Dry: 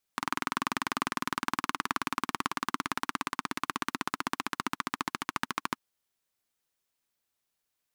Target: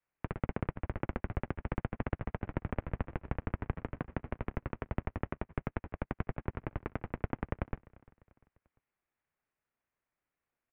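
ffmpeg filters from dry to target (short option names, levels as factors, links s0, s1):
-filter_complex "[0:a]adynamicequalizer=threshold=0.00355:dfrequency=170:dqfactor=1.3:tfrequency=170:tqfactor=1.3:attack=5:release=100:ratio=0.375:range=2:mode=cutabove:tftype=bell,asetrate=22050,aresample=44100,atempo=2,asplit=2[s0][s1];[s1]aecho=0:1:257|514|771:0.0668|0.0301|0.0135[s2];[s0][s2]amix=inputs=2:normalize=0,asetrate=32667,aresample=44100,highpass=f=190:t=q:w=0.5412,highpass=f=190:t=q:w=1.307,lowpass=f=2700:t=q:w=0.5176,lowpass=f=2700:t=q:w=0.7071,lowpass=f=2700:t=q:w=1.932,afreqshift=-340,volume=0.668"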